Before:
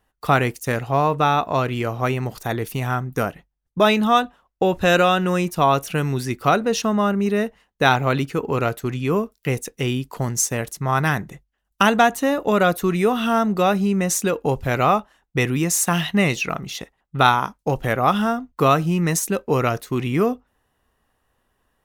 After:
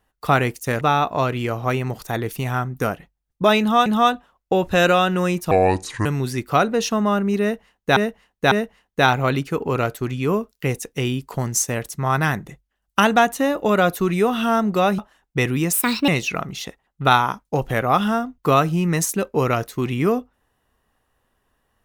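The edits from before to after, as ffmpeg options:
-filter_complex "[0:a]asplit=10[s0][s1][s2][s3][s4][s5][s6][s7][s8][s9];[s0]atrim=end=0.812[s10];[s1]atrim=start=1.168:end=4.222[s11];[s2]atrim=start=3.958:end=5.614[s12];[s3]atrim=start=5.61:end=5.98,asetpts=PTS-STARTPTS,asetrate=29988,aresample=44100[s13];[s4]atrim=start=5.976:end=7.892[s14];[s5]atrim=start=7.338:end=7.892[s15];[s6]atrim=start=7.338:end=13.812[s16];[s7]atrim=start=14.978:end=15.724[s17];[s8]atrim=start=15.72:end=16.22,asetpts=PTS-STARTPTS,asetrate=61740,aresample=44100,atrim=end_sample=15750,asetpts=PTS-STARTPTS[s18];[s9]atrim=start=16.216[s19];[s10][s11]acrossfade=d=0.004:c1=hsin:c2=hsin[s20];[s20][s12]acrossfade=d=0.004:c1=hsin:c2=hsin[s21];[s21][s13]acrossfade=d=0.004:c1=hsin:c2=hsin[s22];[s22][s14]acrossfade=d=0.004:c1=hsin:c2=hsin[s23];[s23][s15]acrossfade=d=0.004:c1=hsin:c2=hsin[s24];[s24][s16]acrossfade=d=0.004:c1=hsin:c2=hsin[s25];[s25][s17]acrossfade=d=0.004:c1=hsin:c2=hsin[s26];[s26][s18]acrossfade=d=0.004:c1=hsin:c2=hsin[s27];[s27][s19]acrossfade=d=0.004:c1=hsin:c2=hsin"

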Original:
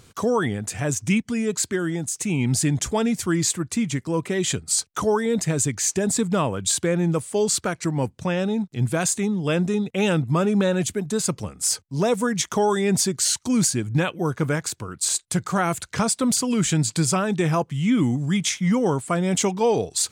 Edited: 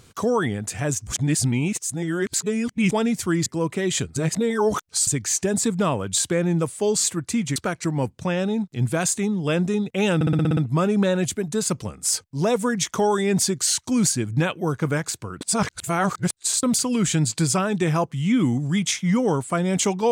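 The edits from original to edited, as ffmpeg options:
-filter_complex "[0:a]asplit=17[s0][s1][s2][s3][s4][s5][s6][s7][s8][s9][s10][s11][s12][s13][s14][s15][s16];[s0]atrim=end=1.072[s17];[s1]atrim=start=1.068:end=2.912,asetpts=PTS-STARTPTS,areverse[s18];[s2]atrim=start=2.908:end=3.462[s19];[s3]atrim=start=3.988:end=4.692[s20];[s4]atrim=start=4.688:end=5.602,asetpts=PTS-STARTPTS,areverse[s21];[s5]atrim=start=5.598:end=7.562[s22];[s6]atrim=start=3.458:end=3.992[s23];[s7]atrim=start=7.558:end=10.212[s24];[s8]atrim=start=10.148:end=10.212[s25];[s9]atrim=start=10.148:end=10.212[s26];[s10]atrim=start=10.148:end=10.212[s27];[s11]atrim=start=10.148:end=10.212[s28];[s12]atrim=start=10.148:end=10.212[s29];[s13]atrim=start=10.148:end=10.212[s30];[s14]atrim=start=10.148:end=14.992[s31];[s15]atrim=start=14.988:end=16.212,asetpts=PTS-STARTPTS,areverse[s32];[s16]atrim=start=16.208[s33];[s17][s18]acrossfade=d=0.004:c1=hsin:c2=hsin[s34];[s34][s19]acrossfade=d=0.004:c1=hsin:c2=hsin[s35];[s35][s20]acrossfade=d=0.004:c1=hsin:c2=hsin[s36];[s36][s21]acrossfade=d=0.004:c1=hsin:c2=hsin[s37];[s37][s22]acrossfade=d=0.004:c1=hsin:c2=hsin[s38];[s38][s23]acrossfade=d=0.004:c1=hsin:c2=hsin[s39];[s39][s24]acrossfade=d=0.004:c1=hsin:c2=hsin[s40];[s40][s25]acrossfade=d=0.004:c1=hsin:c2=hsin[s41];[s41][s26]acrossfade=d=0.004:c1=hsin:c2=hsin[s42];[s42][s27]acrossfade=d=0.004:c1=hsin:c2=hsin[s43];[s43][s28]acrossfade=d=0.004:c1=hsin:c2=hsin[s44];[s44][s29]acrossfade=d=0.004:c1=hsin:c2=hsin[s45];[s45][s30]acrossfade=d=0.004:c1=hsin:c2=hsin[s46];[s46][s31]acrossfade=d=0.004:c1=hsin:c2=hsin[s47];[s47][s32]acrossfade=d=0.004:c1=hsin:c2=hsin[s48];[s48][s33]acrossfade=d=0.004:c1=hsin:c2=hsin"

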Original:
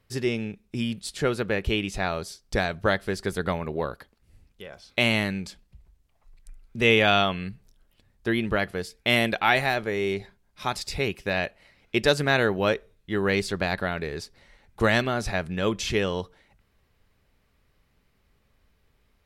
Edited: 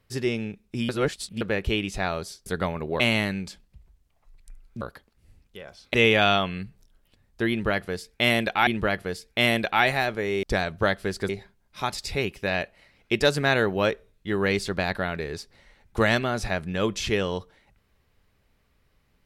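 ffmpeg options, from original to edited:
-filter_complex "[0:a]asplit=10[s0][s1][s2][s3][s4][s5][s6][s7][s8][s9];[s0]atrim=end=0.892[s10];[s1]atrim=start=0.888:end=1.412,asetpts=PTS-STARTPTS,areverse[s11];[s2]atrim=start=1.408:end=2.462[s12];[s3]atrim=start=3.318:end=3.862[s13];[s4]atrim=start=4.988:end=6.802[s14];[s5]atrim=start=3.858:end=4.992[s15];[s6]atrim=start=6.798:end=9.532[s16];[s7]atrim=start=8.358:end=10.122[s17];[s8]atrim=start=2.458:end=3.322[s18];[s9]atrim=start=10.118[s19];[s10][s11]acrossfade=d=0.004:c1=hsin:c2=hsin[s20];[s20][s12]acrossfade=d=0.004:c1=hsin:c2=hsin[s21];[s21][s13]acrossfade=d=0.004:c1=hsin:c2=hsin[s22];[s22][s14]acrossfade=d=0.004:c1=hsin:c2=hsin[s23];[s23][s15]acrossfade=d=0.004:c1=hsin:c2=hsin[s24];[s24][s16]acrossfade=d=0.004:c1=hsin:c2=hsin[s25];[s25][s17]acrossfade=d=0.004:c1=hsin:c2=hsin[s26];[s26][s18]acrossfade=d=0.004:c1=hsin:c2=hsin[s27];[s27][s19]acrossfade=d=0.004:c1=hsin:c2=hsin"

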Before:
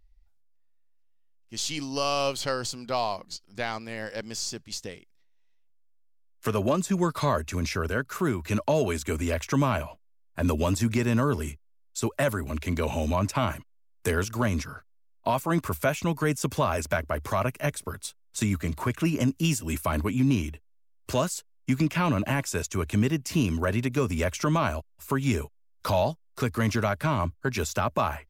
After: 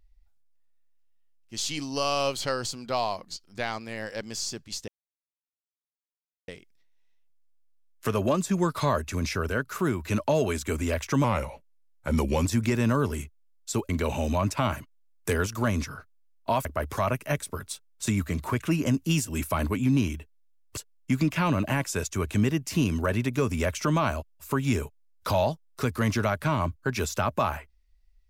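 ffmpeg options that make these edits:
-filter_complex "[0:a]asplit=7[s0][s1][s2][s3][s4][s5][s6];[s0]atrim=end=4.88,asetpts=PTS-STARTPTS,afade=t=out:st=4.876:d=0.004:c=hsin,apad=pad_dur=1.6[s7];[s1]atrim=start=4.88:end=9.644,asetpts=PTS-STARTPTS,afade=t=in:d=0.004:c=hsin[s8];[s2]atrim=start=9.64:end=10.73,asetpts=PTS-STARTPTS,asetrate=39690,aresample=44100[s9];[s3]atrim=start=10.726:end=12.172[s10];[s4]atrim=start=12.668:end=15.432[s11];[s5]atrim=start=16.988:end=21.112[s12];[s6]atrim=start=21.358[s13];[s7][s8]concat=n=2:v=0:a=1[s14];[s14][s9]acrossfade=d=0.004:c1=hsin:c2=hsin[s15];[s15][s10]acrossfade=d=0.004:c1=hsin:c2=hsin[s16];[s16][s11]acrossfade=d=0.004:c1=hsin:c2=hsin[s17];[s17][s12]acrossfade=d=0.004:c1=hsin:c2=hsin[s18];[s18][s13]acrossfade=d=0.004:c1=hsin:c2=hsin"

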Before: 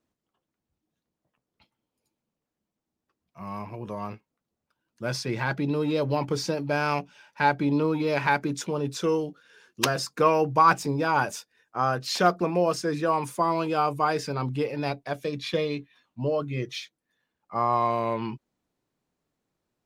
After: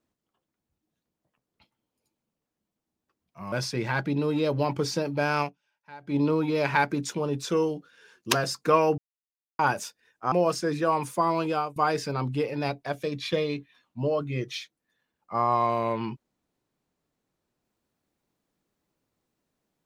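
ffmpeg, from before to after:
-filter_complex "[0:a]asplit=8[s0][s1][s2][s3][s4][s5][s6][s7];[s0]atrim=end=3.522[s8];[s1]atrim=start=5.038:end=7.11,asetpts=PTS-STARTPTS,afade=t=out:st=1.902:d=0.17:c=qua:silence=0.0707946[s9];[s2]atrim=start=7.11:end=7.51,asetpts=PTS-STARTPTS,volume=0.0708[s10];[s3]atrim=start=7.51:end=10.5,asetpts=PTS-STARTPTS,afade=t=in:d=0.17:c=qua:silence=0.0707946,afade=t=out:st=2.986:d=0.004:c=hsin[s11];[s4]atrim=start=10.5:end=11.11,asetpts=PTS-STARTPTS,volume=0[s12];[s5]atrim=start=11.11:end=11.842,asetpts=PTS-STARTPTS,afade=t=in:d=0.004:c=hsin[s13];[s6]atrim=start=12.528:end=13.97,asetpts=PTS-STARTPTS,afade=t=out:st=1.182:d=0.26:silence=0.0794328[s14];[s7]atrim=start=13.97,asetpts=PTS-STARTPTS,afade=t=in:d=0.004:c=hsin:silence=0.0794328[s15];[s9][s10][s11][s12][s13]concat=n=5:v=0:a=1[s16];[s8][s16]acrossfade=d=0.004:c1=hsin:c2=hsin[s17];[s14][s15]concat=n=2:v=0:a=1[s18];[s17][s18]acrossfade=d=0.004:c1=hsin:c2=hsin"

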